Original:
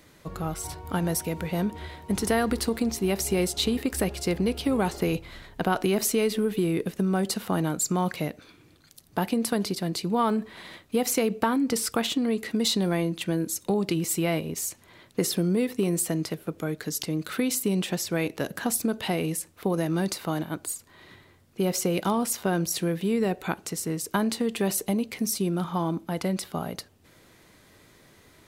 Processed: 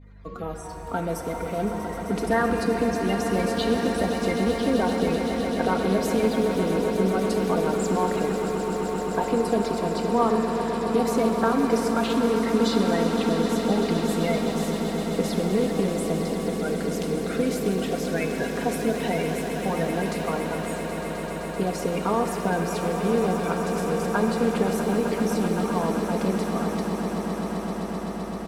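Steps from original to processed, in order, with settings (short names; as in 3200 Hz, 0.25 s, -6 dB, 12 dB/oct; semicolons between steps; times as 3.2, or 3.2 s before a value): bin magnitudes rounded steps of 30 dB; expander -51 dBFS; LPF 2200 Hz 6 dB/oct; low shelf 140 Hz -6 dB; comb 4.3 ms, depth 43%; swelling echo 0.129 s, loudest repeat 8, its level -12 dB; hum 50 Hz, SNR 22 dB; shimmer reverb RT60 3 s, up +7 st, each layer -8 dB, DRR 5.5 dB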